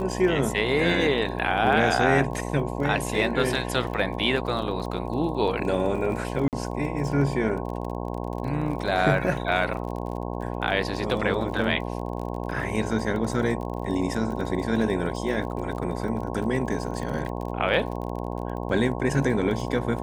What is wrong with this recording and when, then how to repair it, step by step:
buzz 60 Hz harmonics 18 -31 dBFS
crackle 34 per s -33 dBFS
6.48–6.53 s: dropout 48 ms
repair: de-click; de-hum 60 Hz, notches 18; interpolate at 6.48 s, 48 ms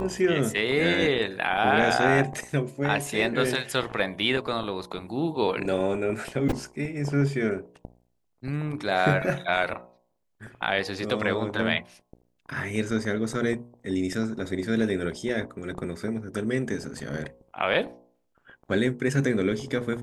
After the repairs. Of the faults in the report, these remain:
nothing left

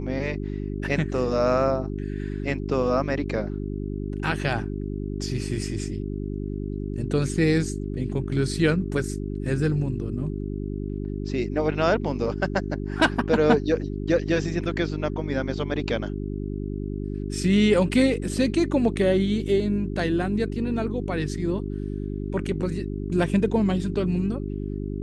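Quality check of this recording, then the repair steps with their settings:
hum 50 Hz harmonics 8 -30 dBFS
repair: de-hum 50 Hz, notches 8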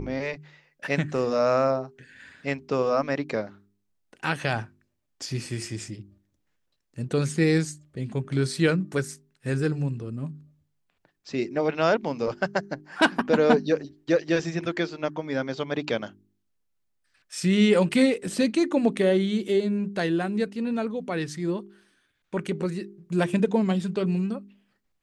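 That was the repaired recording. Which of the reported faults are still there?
nothing left

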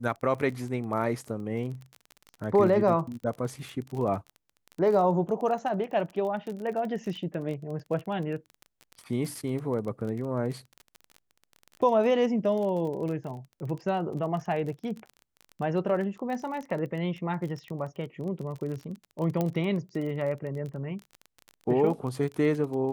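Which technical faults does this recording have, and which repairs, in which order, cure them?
crackle 29 per s -34 dBFS
19.41 s: pop -15 dBFS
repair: de-click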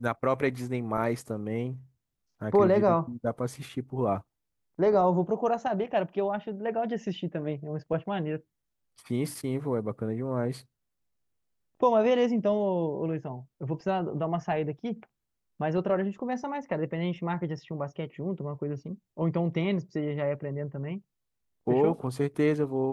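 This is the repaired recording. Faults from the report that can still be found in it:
nothing left

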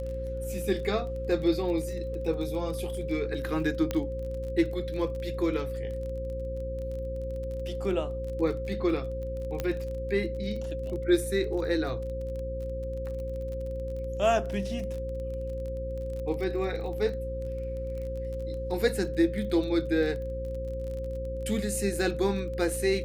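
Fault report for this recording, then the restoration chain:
crackle 26 per s -36 dBFS
hum 60 Hz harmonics 7 -36 dBFS
whine 530 Hz -34 dBFS
3.91 s: pop -15 dBFS
9.60 s: pop -16 dBFS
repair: de-click; de-hum 60 Hz, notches 7; band-stop 530 Hz, Q 30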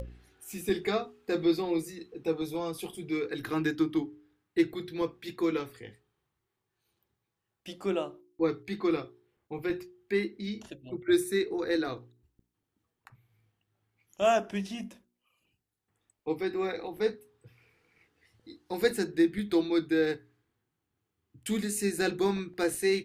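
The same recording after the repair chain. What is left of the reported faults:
nothing left

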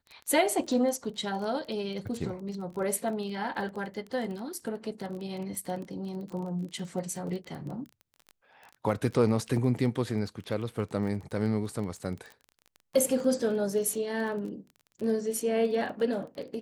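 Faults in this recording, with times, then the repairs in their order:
crackle 22 per s -36 dBFS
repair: de-click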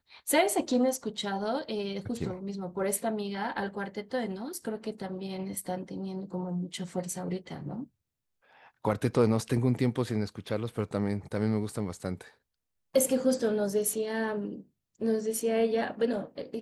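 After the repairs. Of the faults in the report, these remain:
nothing left

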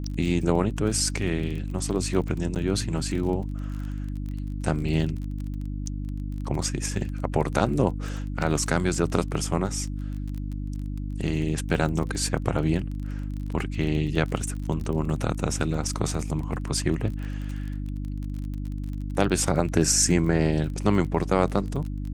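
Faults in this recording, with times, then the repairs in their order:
crackle 25 per s -32 dBFS
hum 50 Hz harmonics 6 -31 dBFS
2.55–2.56 s: dropout 9.2 ms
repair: de-click; de-hum 50 Hz, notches 6; interpolate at 2.55 s, 9.2 ms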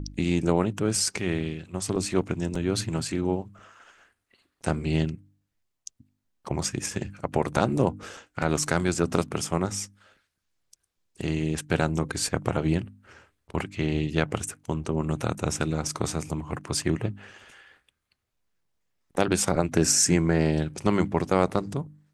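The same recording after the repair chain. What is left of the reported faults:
nothing left

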